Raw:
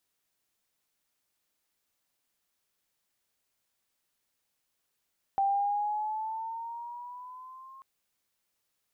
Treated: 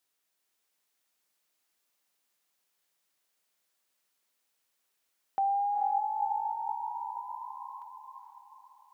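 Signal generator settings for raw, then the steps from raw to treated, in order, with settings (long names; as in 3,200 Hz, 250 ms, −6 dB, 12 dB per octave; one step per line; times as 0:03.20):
pitch glide with a swell sine, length 2.44 s, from 783 Hz, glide +5.5 semitones, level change −24 dB, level −23 dB
high-pass filter 320 Hz 6 dB per octave
feedback delay with all-pass diffusion 468 ms, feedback 45%, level −3.5 dB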